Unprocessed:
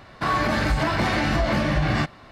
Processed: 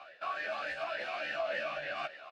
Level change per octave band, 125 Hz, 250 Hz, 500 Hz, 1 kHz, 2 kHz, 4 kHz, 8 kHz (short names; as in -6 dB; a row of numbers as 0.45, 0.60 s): -39.5 dB, -32.0 dB, -10.0 dB, -13.5 dB, -10.5 dB, -13.0 dB, under -20 dB